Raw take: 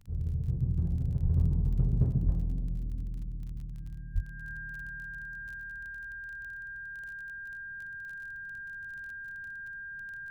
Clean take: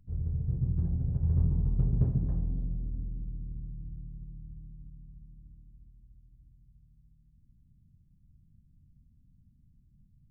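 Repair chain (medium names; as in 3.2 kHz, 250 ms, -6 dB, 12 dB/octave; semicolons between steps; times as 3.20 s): de-click; band-stop 1.6 kHz, Q 30; 1.23–1.35 s: high-pass 140 Hz 24 dB/octave; 2.25–2.37 s: high-pass 140 Hz 24 dB/octave; 4.14–4.26 s: high-pass 140 Hz 24 dB/octave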